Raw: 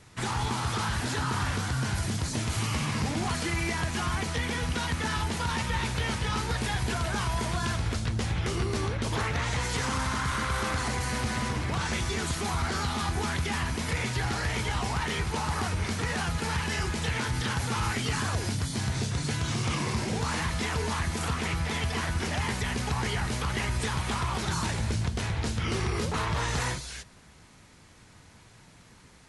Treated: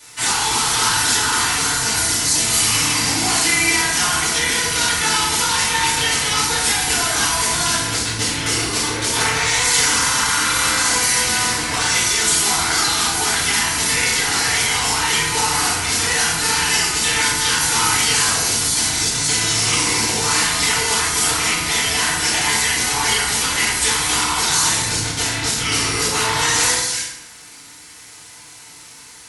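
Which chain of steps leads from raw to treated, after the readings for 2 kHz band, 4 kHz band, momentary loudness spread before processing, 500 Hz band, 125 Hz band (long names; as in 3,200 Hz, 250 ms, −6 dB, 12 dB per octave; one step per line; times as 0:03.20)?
+13.5 dB, +17.5 dB, 1 LU, +7.0 dB, −1.5 dB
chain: sub-octave generator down 2 octaves, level +1 dB
spectral tilt +4.5 dB per octave
feedback delay network reverb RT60 0.97 s, low-frequency decay 1.1×, high-frequency decay 0.65×, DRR −9.5 dB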